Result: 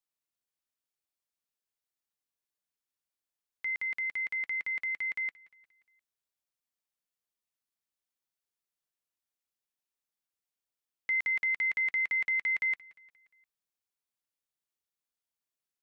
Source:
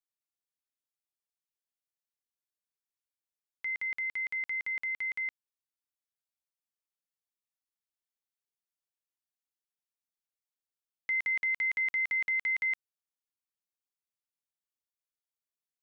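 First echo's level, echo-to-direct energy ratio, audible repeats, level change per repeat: -21.0 dB, -19.5 dB, 3, -6.0 dB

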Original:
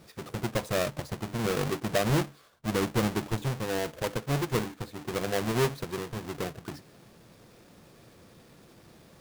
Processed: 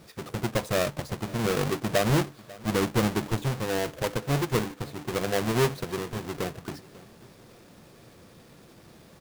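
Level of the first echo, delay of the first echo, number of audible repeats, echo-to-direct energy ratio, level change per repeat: -21.0 dB, 544 ms, 2, -20.5 dB, -8.0 dB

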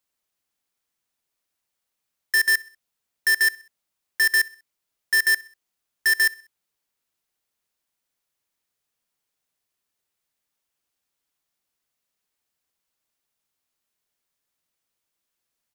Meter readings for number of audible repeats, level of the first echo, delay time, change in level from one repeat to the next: 2, -23.0 dB, 64 ms, -7.0 dB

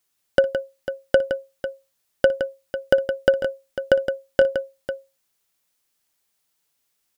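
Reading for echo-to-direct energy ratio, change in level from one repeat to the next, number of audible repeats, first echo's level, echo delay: -7.0 dB, no regular repeats, 3, -19.5 dB, 59 ms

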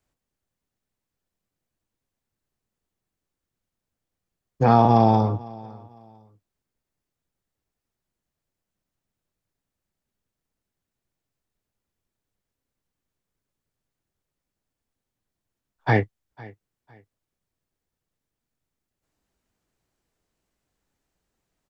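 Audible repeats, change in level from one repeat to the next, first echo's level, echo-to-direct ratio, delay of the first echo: 2, -11.0 dB, -22.0 dB, -21.5 dB, 504 ms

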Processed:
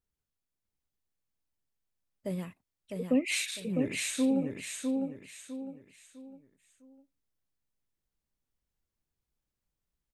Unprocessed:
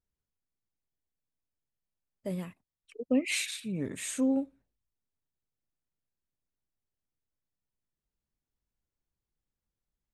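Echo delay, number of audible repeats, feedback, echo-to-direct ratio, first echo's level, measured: 654 ms, 4, 35%, -3.5 dB, -4.0 dB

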